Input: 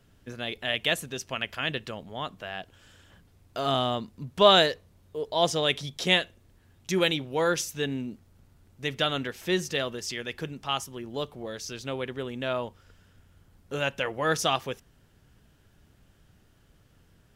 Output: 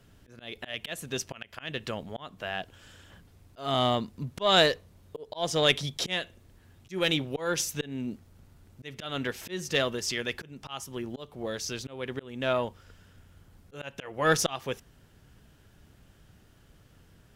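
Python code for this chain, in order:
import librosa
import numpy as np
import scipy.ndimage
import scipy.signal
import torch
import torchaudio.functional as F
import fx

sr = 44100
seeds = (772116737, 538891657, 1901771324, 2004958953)

y = fx.auto_swell(x, sr, attack_ms=294.0)
y = fx.cheby_harmonics(y, sr, harmonics=(4,), levels_db=(-23,), full_scale_db=-8.5)
y = y * 10.0 ** (3.0 / 20.0)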